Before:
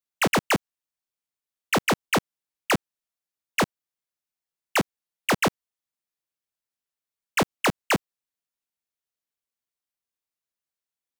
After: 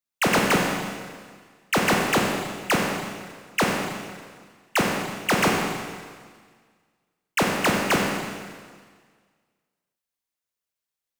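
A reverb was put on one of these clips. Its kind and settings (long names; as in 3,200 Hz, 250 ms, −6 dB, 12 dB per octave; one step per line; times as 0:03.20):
four-comb reverb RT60 1.7 s, combs from 31 ms, DRR −0.5 dB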